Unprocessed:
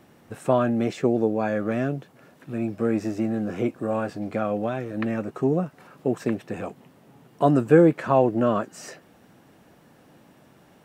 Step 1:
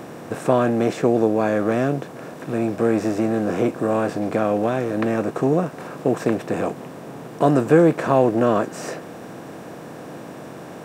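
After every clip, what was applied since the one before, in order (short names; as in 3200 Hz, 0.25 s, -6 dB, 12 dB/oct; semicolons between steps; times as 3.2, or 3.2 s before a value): per-bin compression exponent 0.6; high shelf 7400 Hz +5 dB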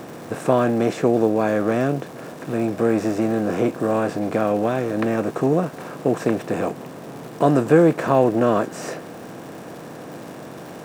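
crackle 240/s -34 dBFS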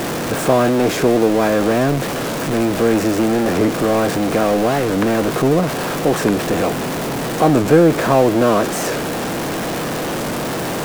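zero-crossing step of -19.5 dBFS; record warp 45 rpm, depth 160 cents; gain +1.5 dB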